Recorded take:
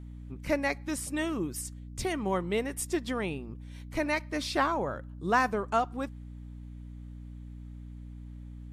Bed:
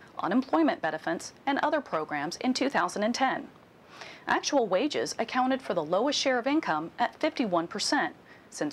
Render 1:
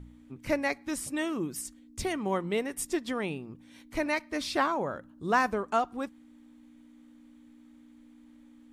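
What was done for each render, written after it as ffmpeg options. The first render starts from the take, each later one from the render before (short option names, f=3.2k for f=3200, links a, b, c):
-af "bandreject=f=60:t=h:w=4,bandreject=f=120:t=h:w=4,bandreject=f=180:t=h:w=4"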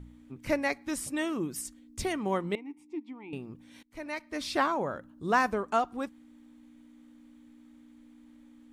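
-filter_complex "[0:a]asettb=1/sr,asplit=3[a][b][c];[a]atrim=end=2.554[d];[b]atrim=start=2.55:end=3.33,asetpts=PTS-STARTPTS,afade=t=in:d=0.004:c=qsin,afade=t=out:st=0.776:d=0.004:c=qsin,asplit=3[e][f][g];[e]bandpass=f=300:t=q:w=8,volume=0dB[h];[f]bandpass=f=870:t=q:w=8,volume=-6dB[i];[g]bandpass=f=2.24k:t=q:w=8,volume=-9dB[j];[h][i][j]amix=inputs=3:normalize=0[k];[c]atrim=start=3.326[l];[d][k]acrossfade=d=0.004:c1=hsin:c2=qsin[m];[m][l]acrossfade=d=0.004:c1=qsin:c2=hsin,asplit=2[n][o];[n]atrim=end=3.83,asetpts=PTS-STARTPTS,afade=t=out:st=3.826:d=0.004:c=hsin:silence=0.0707946[p];[o]atrim=start=3.83,asetpts=PTS-STARTPTS,afade=t=in:d=0.76:silence=0.0707946[q];[p][q]concat=n=2:v=0:a=1"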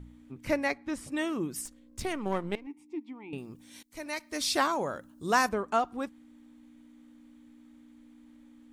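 -filter_complex "[0:a]asettb=1/sr,asplit=3[a][b][c];[a]atrim=end=0.724[d];[b]atrim=start=0.72:end=1.12,asetpts=PTS-STARTPTS,afade=t=in:d=0.004:c=qsin,afade=t=out:st=0.396:d=0.004:c=qsin,lowpass=f=2.6k:p=1[e];[c]atrim=start=1.116[f];[d][e]acrossfade=d=0.004:c1=hsin:c2=qsin[g];[g][f]acrossfade=d=0.004:c1=qsin:c2=hsin,asettb=1/sr,asplit=3[h][i][j];[h]atrim=end=1.654[k];[i]atrim=start=1.65:end=2.67,asetpts=PTS-STARTPTS,afade=t=in:d=0.004:c=qsin,afade=t=out:st=1.016:d=0.004:c=qsin,aeval=exprs='if(lt(val(0),0),0.447*val(0),val(0))':c=same[l];[j]atrim=start=2.666[m];[k][l]acrossfade=d=0.004:c1=hsin:c2=qsin[n];[n][m]acrossfade=d=0.004:c1=qsin:c2=hsin,asettb=1/sr,asplit=3[o][p][q];[o]atrim=end=3.384[r];[p]atrim=start=3.38:end=5.49,asetpts=PTS-STARTPTS,afade=t=in:d=0.004:c=qsin,afade=t=out:st=2.106:d=0.004:c=qsin,bass=f=250:g=-2,treble=f=4k:g=12[s];[q]atrim=start=5.486[t];[r][s]acrossfade=d=0.004:c1=hsin:c2=qsin[u];[u][t]acrossfade=d=0.004:c1=qsin:c2=hsin"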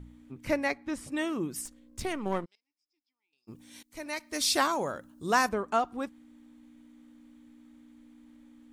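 -filter_complex "[0:a]asplit=3[a][b][c];[a]afade=t=out:st=2.44:d=0.02[d];[b]bandpass=f=5.1k:t=q:w=17,afade=t=in:st=2.44:d=0.02,afade=t=out:st=3.47:d=0.02[e];[c]afade=t=in:st=3.47:d=0.02[f];[d][e][f]amix=inputs=3:normalize=0,asettb=1/sr,asplit=3[g][h][i];[g]atrim=end=4.334[j];[h]atrim=start=4.33:end=4.92,asetpts=PTS-STARTPTS,afade=t=in:d=0.004:c=qsin,afade=t=out:st=0.586:d=0.004:c=qsin,highshelf=f=4.5k:g=5.5[k];[i]atrim=start=4.916[l];[j][k]acrossfade=d=0.004:c1=hsin:c2=qsin[m];[m][l]acrossfade=d=0.004:c1=qsin:c2=hsin"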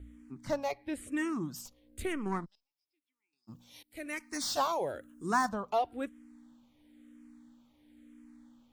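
-filter_complex "[0:a]acrossover=split=1200[a][b];[b]asoftclip=type=hard:threshold=-31.5dB[c];[a][c]amix=inputs=2:normalize=0,asplit=2[d][e];[e]afreqshift=-1[f];[d][f]amix=inputs=2:normalize=1"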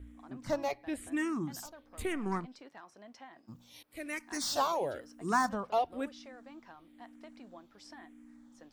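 -filter_complex "[1:a]volume=-25.5dB[a];[0:a][a]amix=inputs=2:normalize=0"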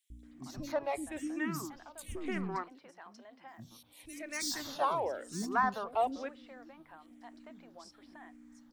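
-filter_complex "[0:a]acrossover=split=330|3400[a][b][c];[a]adelay=100[d];[b]adelay=230[e];[d][e][c]amix=inputs=3:normalize=0"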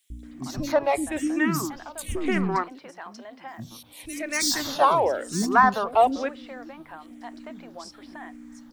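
-af "volume=12dB"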